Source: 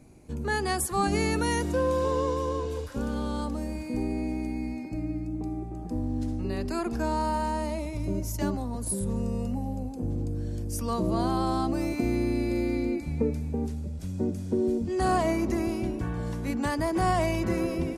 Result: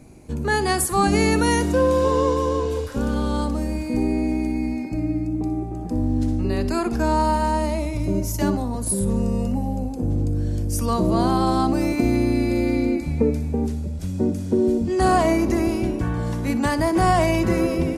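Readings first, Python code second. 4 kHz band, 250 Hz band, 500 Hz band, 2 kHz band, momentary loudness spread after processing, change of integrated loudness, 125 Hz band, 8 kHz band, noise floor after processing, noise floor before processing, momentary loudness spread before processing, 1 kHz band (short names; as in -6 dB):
+7.0 dB, +7.5 dB, +7.5 dB, +7.0 dB, 7 LU, +7.5 dB, +7.5 dB, +7.0 dB, -29 dBFS, -37 dBFS, 8 LU, +7.5 dB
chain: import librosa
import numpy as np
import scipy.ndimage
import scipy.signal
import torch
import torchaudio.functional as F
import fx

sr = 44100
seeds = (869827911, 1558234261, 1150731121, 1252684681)

y = fx.room_flutter(x, sr, wall_m=10.5, rt60_s=0.26)
y = y * librosa.db_to_amplitude(7.0)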